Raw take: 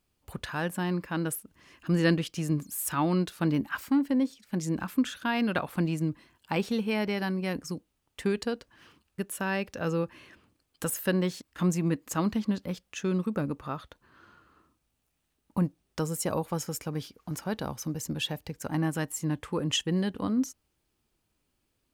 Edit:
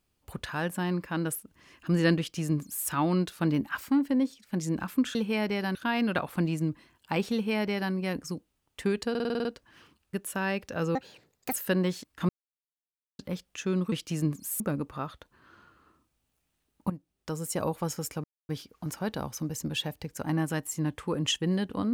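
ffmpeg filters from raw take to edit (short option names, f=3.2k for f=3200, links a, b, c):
-filter_complex "[0:a]asplit=18[a][b][c][d][e][f][g][h][i][j][k][l][m][n][o][p][q][r];[a]atrim=end=5.152[s];[b]atrim=start=6.728:end=7.332[t];[c]atrim=start=5.148:end=8.552[u];[d]atrim=start=8.498:end=8.552[v];[e]atrim=start=8.498:end=8.552[w];[f]atrim=start=8.498:end=8.552[x];[g]atrim=start=8.498:end=8.552[y];[h]atrim=start=8.498:end=8.552[z];[i]atrim=start=8.498:end=8.552[aa];[j]atrim=start=8.498:end=10.004[ab];[k]atrim=start=10:end=10.92,asetpts=PTS-STARTPTS,asetrate=68796,aresample=44100[ac];[l]atrim=start=10.916:end=11.67,asetpts=PTS-STARTPTS,afade=t=out:st=0.75:d=0.004:c=hsin[ad];[m]atrim=start=11.67:end=12.57,asetpts=PTS-STARTPTS,volume=0[ae];[n]atrim=start=12.57:end=13.302,asetpts=PTS-STARTPTS,afade=t=in:d=0.004:c=hsin[af];[o]atrim=start=2.188:end=2.872[ag];[p]atrim=start=13.298:end=15.6,asetpts=PTS-STARTPTS,afade=t=out:st=2.298:d=0.004:c=hsin:silence=0.188365[ah];[q]atrim=start=15.6:end=16.94,asetpts=PTS-STARTPTS,afade=t=in:d=0.76:silence=0.188365,afade=t=out:st=1.336:d=0.004:c=hsin,apad=pad_dur=0.25[ai];[r]atrim=start=16.94,asetpts=PTS-STARTPTS,afade=t=in:d=0.004:c=hsin[aj];[s][t]acrossfade=d=0.004:c1=hsin:c2=hsin[ak];[ak][u]acrossfade=d=0.004:c1=hsin:c2=hsin[al];[al][v]acrossfade=d=0.004:c1=hsin:c2=hsin[am];[am][w]acrossfade=d=0.004:c1=hsin:c2=hsin[an];[an][x]acrossfade=d=0.004:c1=hsin:c2=hsin[ao];[ao][y]acrossfade=d=0.004:c1=hsin:c2=hsin[ap];[ap][z]acrossfade=d=0.004:c1=hsin:c2=hsin[aq];[aq][aa]acrossfade=d=0.004:c1=hsin:c2=hsin[ar];[ar][ab]acrossfade=d=0.004:c1=hsin:c2=hsin[as];[as][ac]acrossfade=d=0.004:c1=hsin:c2=hsin[at];[ad][ae][af]concat=n=3:v=0:a=1[au];[at][au]acrossfade=d=0.004:c1=hsin:c2=hsin[av];[av][ag]acrossfade=d=0.004:c1=hsin:c2=hsin[aw];[ah][ai][aj]concat=n=3:v=0:a=1[ax];[aw][ax]acrossfade=d=0.004:c1=hsin:c2=hsin"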